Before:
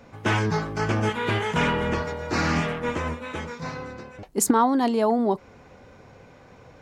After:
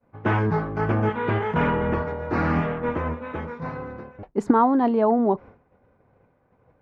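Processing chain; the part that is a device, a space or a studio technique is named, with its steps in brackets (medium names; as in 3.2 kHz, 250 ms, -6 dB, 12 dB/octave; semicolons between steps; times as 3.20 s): hearing-loss simulation (low-pass 1.5 kHz 12 dB/octave; expander -39 dBFS); trim +2 dB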